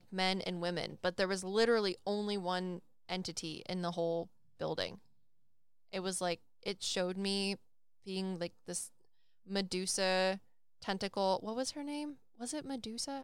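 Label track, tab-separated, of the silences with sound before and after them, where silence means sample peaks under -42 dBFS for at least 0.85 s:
4.950000	5.930000	silence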